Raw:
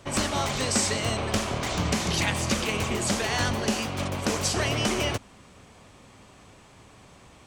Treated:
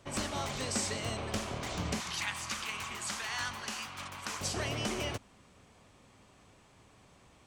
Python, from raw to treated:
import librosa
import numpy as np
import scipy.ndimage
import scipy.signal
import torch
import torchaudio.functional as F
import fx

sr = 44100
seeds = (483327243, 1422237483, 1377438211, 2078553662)

y = fx.low_shelf_res(x, sr, hz=760.0, db=-11.0, q=1.5, at=(2.0, 4.41))
y = y * librosa.db_to_amplitude(-9.0)